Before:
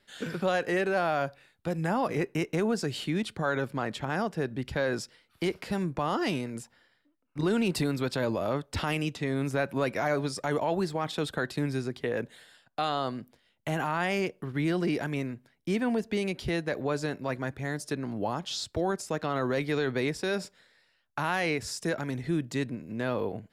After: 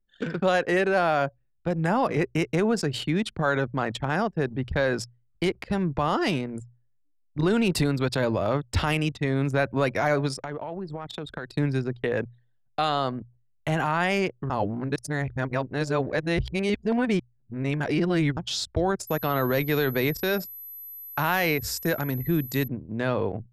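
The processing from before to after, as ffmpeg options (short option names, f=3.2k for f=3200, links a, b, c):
-filter_complex "[0:a]asettb=1/sr,asplit=3[a][b][c];[a]atrim=end=10.334[d];[b]atrim=start=10.33:end=11.55,asetpts=PTS-STARTPTS,afade=t=in:d=0.004:c=qsin,afade=t=out:st=1.216:d=0.004:c=qsin,acompressor=threshold=-35dB:ratio=4:attack=3.2:release=140:knee=1:detection=peak[e];[c]atrim=start=11.546[f];[d][e]acrossfade=d=0.004:c1=hsin:c2=qsin[g];[g][f]acrossfade=d=0.004:c1=qsin:c2=hsin,asettb=1/sr,asplit=3[h][i][j];[h]atrim=end=19.074[k];[i]atrim=start=19.07:end=22.68,asetpts=PTS-STARTPTS,afade=t=in:d=0.004:c=qsin,afade=t=out:st=3.606:d=0.004:c=qsin,aeval=exprs='val(0)+0.00891*sin(2*PI*12000*n/s)':c=same[l];[j]atrim=start=22.676[m];[k][l]acrossfade=d=0.004:c1=hsin:c2=qsin[n];[n][m]acrossfade=d=0.004:c1=qsin:c2=hsin,asplit=3[o][p][q];[o]atrim=end=14.502[r];[p]atrim=start=14.498:end=18.372,asetpts=PTS-STARTPTS,areverse[s];[q]atrim=start=18.368[t];[r][s]acrossfade=d=0.004:c1=hsin:c2=hsin[u];[u][t]acrossfade=d=0.004:c1=hsin:c2=hsin,anlmdn=1,bandreject=f=60:t=h:w=6,bandreject=f=120:t=h:w=6,asubboost=boost=2:cutoff=130,volume=5dB"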